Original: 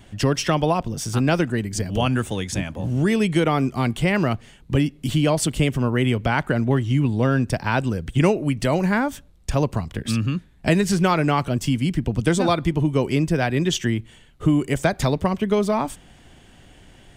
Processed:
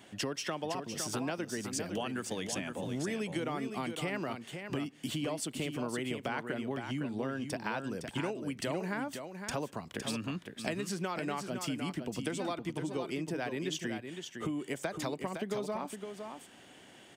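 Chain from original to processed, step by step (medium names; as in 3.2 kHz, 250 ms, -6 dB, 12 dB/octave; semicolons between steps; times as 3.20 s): high-pass 240 Hz 12 dB/octave; compression 6:1, threshold -30 dBFS, peak gain reduction 15 dB; delay 511 ms -7 dB; trim -3.5 dB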